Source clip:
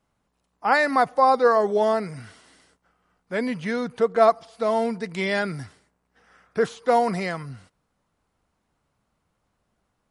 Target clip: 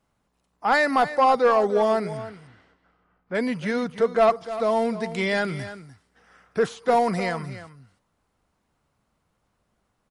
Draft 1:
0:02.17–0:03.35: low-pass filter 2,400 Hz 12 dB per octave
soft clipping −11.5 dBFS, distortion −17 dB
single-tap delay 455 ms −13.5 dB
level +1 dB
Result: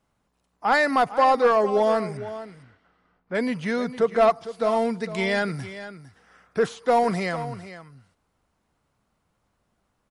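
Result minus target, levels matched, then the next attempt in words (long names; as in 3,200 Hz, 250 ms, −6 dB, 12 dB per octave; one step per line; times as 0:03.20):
echo 155 ms late
0:02.17–0:03.35: low-pass filter 2,400 Hz 12 dB per octave
soft clipping −11.5 dBFS, distortion −17 dB
single-tap delay 300 ms −13.5 dB
level +1 dB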